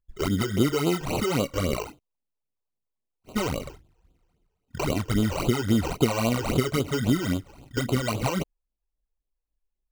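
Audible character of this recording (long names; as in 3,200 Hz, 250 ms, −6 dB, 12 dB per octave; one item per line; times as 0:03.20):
aliases and images of a low sample rate 1,700 Hz, jitter 0%
phaser sweep stages 12, 3.7 Hz, lowest notch 200–1,900 Hz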